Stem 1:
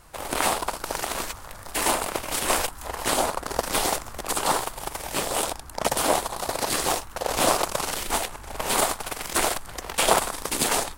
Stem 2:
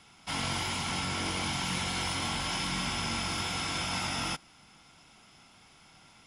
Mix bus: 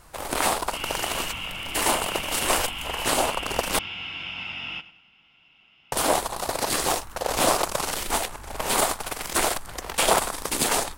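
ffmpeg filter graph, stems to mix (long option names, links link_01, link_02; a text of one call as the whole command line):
ffmpeg -i stem1.wav -i stem2.wav -filter_complex "[0:a]volume=0.5dB,asplit=3[link_01][link_02][link_03];[link_01]atrim=end=3.79,asetpts=PTS-STARTPTS,afade=type=out:start_time=3.786:duration=0.004:curve=hsin[link_04];[link_02]atrim=start=3.79:end=5.92,asetpts=PTS-STARTPTS,volume=0[link_05];[link_03]atrim=start=5.92,asetpts=PTS-STARTPTS,afade=type=in:duration=0.004:curve=hsin[link_06];[link_04][link_05][link_06]concat=n=3:v=0:a=1[link_07];[1:a]lowpass=frequency=2800:width_type=q:width=10,adelay=450,volume=-9.5dB,asplit=2[link_08][link_09];[link_09]volume=-16dB,aecho=0:1:99|198|297|396|495:1|0.39|0.152|0.0593|0.0231[link_10];[link_07][link_08][link_10]amix=inputs=3:normalize=0,asoftclip=type=tanh:threshold=-5dB" out.wav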